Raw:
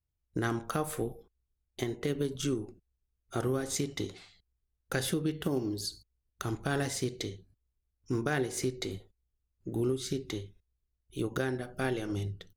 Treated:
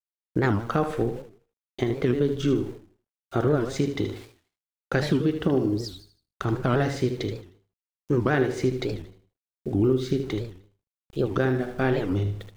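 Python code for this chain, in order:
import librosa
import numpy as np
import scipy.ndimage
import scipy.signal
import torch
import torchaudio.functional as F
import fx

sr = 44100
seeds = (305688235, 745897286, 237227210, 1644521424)

y = scipy.signal.sosfilt(scipy.signal.butter(2, 4400.0, 'lowpass', fs=sr, output='sos'), x)
y = fx.high_shelf(y, sr, hz=2400.0, db=-7.5)
y = np.where(np.abs(y) >= 10.0 ** (-55.0 / 20.0), y, 0.0)
y = fx.echo_feedback(y, sr, ms=77, feedback_pct=35, wet_db=-9.0)
y = fx.record_warp(y, sr, rpm=78.0, depth_cents=250.0)
y = y * 10.0 ** (8.5 / 20.0)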